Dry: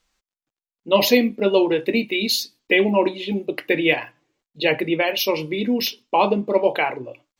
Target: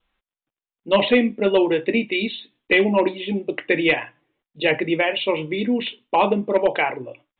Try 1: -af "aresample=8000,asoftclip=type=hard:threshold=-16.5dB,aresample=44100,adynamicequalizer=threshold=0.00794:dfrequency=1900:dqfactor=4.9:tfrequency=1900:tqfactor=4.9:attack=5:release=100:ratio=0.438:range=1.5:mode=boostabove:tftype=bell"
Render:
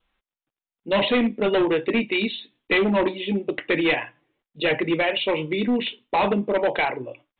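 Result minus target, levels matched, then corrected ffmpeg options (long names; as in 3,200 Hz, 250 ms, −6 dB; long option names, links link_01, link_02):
hard clipping: distortion +12 dB
-af "aresample=8000,asoftclip=type=hard:threshold=-9dB,aresample=44100,adynamicequalizer=threshold=0.00794:dfrequency=1900:dqfactor=4.9:tfrequency=1900:tqfactor=4.9:attack=5:release=100:ratio=0.438:range=1.5:mode=boostabove:tftype=bell"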